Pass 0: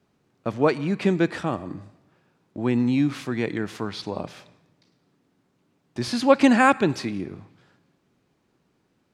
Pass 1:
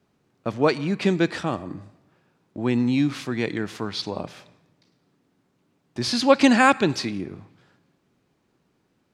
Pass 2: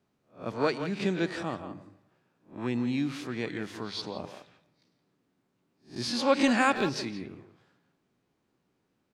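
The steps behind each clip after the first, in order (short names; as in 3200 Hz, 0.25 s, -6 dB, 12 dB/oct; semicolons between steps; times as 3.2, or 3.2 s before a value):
dynamic EQ 4700 Hz, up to +7 dB, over -43 dBFS, Q 0.83
spectral swells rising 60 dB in 0.30 s; notches 50/100/150 Hz; speakerphone echo 0.17 s, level -9 dB; gain -8.5 dB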